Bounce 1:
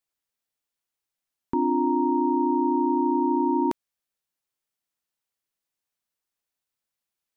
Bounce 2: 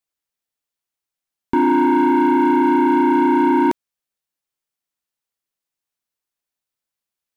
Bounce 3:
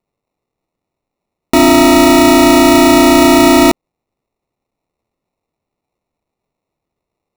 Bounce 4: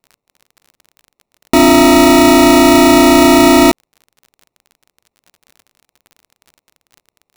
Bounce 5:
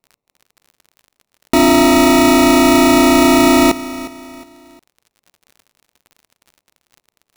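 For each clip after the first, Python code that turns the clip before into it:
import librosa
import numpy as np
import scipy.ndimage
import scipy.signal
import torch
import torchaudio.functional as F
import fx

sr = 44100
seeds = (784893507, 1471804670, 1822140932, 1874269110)

y1 = fx.leveller(x, sr, passes=2)
y1 = y1 * librosa.db_to_amplitude(4.0)
y2 = fx.sample_hold(y1, sr, seeds[0], rate_hz=1600.0, jitter_pct=0)
y2 = y2 * librosa.db_to_amplitude(8.0)
y3 = fx.dmg_crackle(y2, sr, seeds[1], per_s=40.0, level_db=-30.0)
y4 = fx.echo_feedback(y3, sr, ms=359, feedback_pct=37, wet_db=-16.0)
y4 = y4 * librosa.db_to_amplitude(-3.0)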